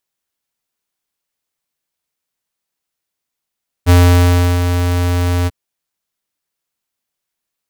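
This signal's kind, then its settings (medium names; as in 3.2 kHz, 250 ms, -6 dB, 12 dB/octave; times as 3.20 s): ADSR square 88.3 Hz, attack 36 ms, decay 695 ms, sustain -8 dB, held 1.61 s, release 32 ms -6.5 dBFS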